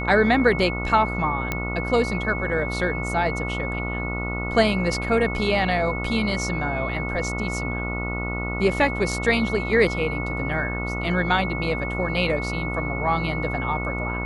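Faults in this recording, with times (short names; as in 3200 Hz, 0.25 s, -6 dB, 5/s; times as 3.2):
buzz 60 Hz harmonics 24 -29 dBFS
tone 2200 Hz -30 dBFS
1.52 pop -10 dBFS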